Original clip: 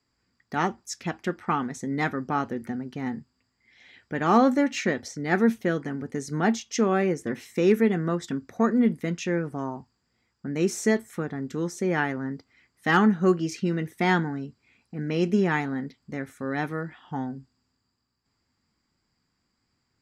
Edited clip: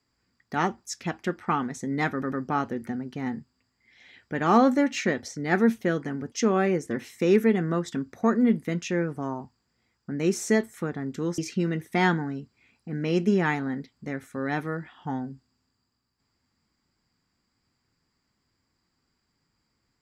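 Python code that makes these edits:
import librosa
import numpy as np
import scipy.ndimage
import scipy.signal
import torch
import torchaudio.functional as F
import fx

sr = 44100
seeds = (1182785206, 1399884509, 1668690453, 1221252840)

y = fx.edit(x, sr, fx.stutter(start_s=2.12, slice_s=0.1, count=3),
    fx.cut(start_s=6.12, length_s=0.56),
    fx.cut(start_s=11.74, length_s=1.7), tone=tone)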